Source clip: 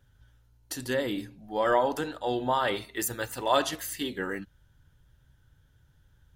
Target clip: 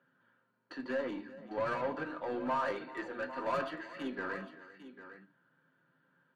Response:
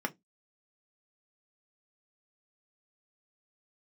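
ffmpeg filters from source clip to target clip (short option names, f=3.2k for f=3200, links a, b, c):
-filter_complex "[0:a]asplit=2[a][b];[b]acompressor=threshold=-39dB:ratio=6,volume=0dB[c];[a][c]amix=inputs=2:normalize=0,highpass=f=250:w=0.5412,highpass=f=250:w=1.3066,equalizer=f=380:t=q:w=4:g=-7,equalizer=f=770:t=q:w=4:g=-8,equalizer=f=2.6k:t=q:w=4:g=-4,lowpass=f=3.5k:w=0.5412,lowpass=f=3.5k:w=1.3066,asoftclip=type=tanh:threshold=-29.5dB,aecho=1:1:385|801:0.15|0.237[d];[1:a]atrim=start_sample=2205,asetrate=35280,aresample=44100[e];[d][e]afir=irnorm=-1:irlink=0,aeval=exprs='0.251*(cos(1*acos(clip(val(0)/0.251,-1,1)))-cos(1*PI/2))+0.00562*(cos(7*acos(clip(val(0)/0.251,-1,1)))-cos(7*PI/2))+0.00251*(cos(8*acos(clip(val(0)/0.251,-1,1)))-cos(8*PI/2))':c=same,volume=-8.5dB"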